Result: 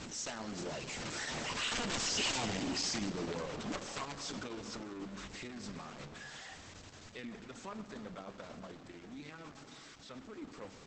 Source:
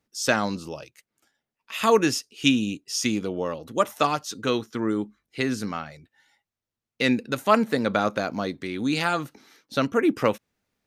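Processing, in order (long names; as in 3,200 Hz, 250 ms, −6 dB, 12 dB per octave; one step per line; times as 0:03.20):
converter with a step at zero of −20.5 dBFS
source passing by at 0:02.21, 22 m/s, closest 5.6 metres
downward compressor 2 to 1, threshold −41 dBFS, peak gain reduction 14.5 dB
wrap-around overflow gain 32 dB
on a send at −7.5 dB: convolution reverb RT60 2.3 s, pre-delay 8 ms
on the sum: level +1.5 dB
Opus 10 kbit/s 48,000 Hz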